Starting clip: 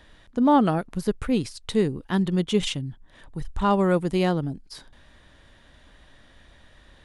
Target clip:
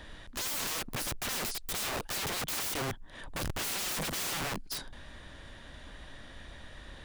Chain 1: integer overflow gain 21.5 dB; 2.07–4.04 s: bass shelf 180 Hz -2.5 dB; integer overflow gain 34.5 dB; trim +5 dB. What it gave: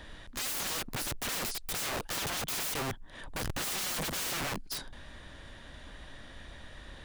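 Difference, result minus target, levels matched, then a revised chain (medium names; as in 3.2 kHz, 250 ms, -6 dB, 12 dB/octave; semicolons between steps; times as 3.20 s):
first integer overflow: distortion -9 dB
integer overflow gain 28 dB; 2.07–4.04 s: bass shelf 180 Hz -2.5 dB; integer overflow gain 34.5 dB; trim +5 dB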